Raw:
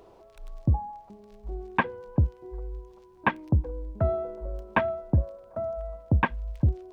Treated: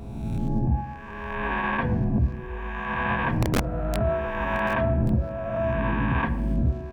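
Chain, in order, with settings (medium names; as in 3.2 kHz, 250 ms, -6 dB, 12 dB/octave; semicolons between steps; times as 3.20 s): reverse spectral sustain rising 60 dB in 1.74 s; peak limiter -17.5 dBFS, peak gain reduction 10.5 dB; de-hum 151.3 Hz, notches 6; on a send at -6.5 dB: reverberation RT60 0.85 s, pre-delay 3 ms; 3.42–3.97 s: on the sum: integer overflow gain 17 dB; delay 1135 ms -17 dB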